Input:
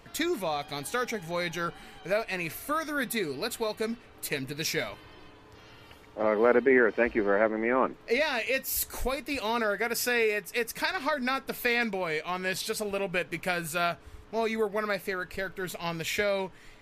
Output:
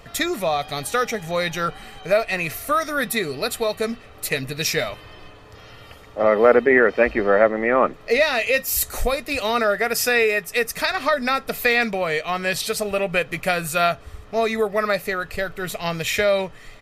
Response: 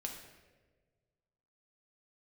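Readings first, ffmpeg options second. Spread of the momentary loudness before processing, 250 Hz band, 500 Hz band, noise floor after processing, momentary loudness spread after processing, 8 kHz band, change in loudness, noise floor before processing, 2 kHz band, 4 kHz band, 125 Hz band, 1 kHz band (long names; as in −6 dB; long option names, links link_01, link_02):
9 LU, +5.0 dB, +8.5 dB, −44 dBFS, 9 LU, +8.0 dB, +8.0 dB, −53 dBFS, +8.0 dB, +8.0 dB, +8.0 dB, +8.5 dB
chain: -af "aecho=1:1:1.6:0.39,volume=7.5dB"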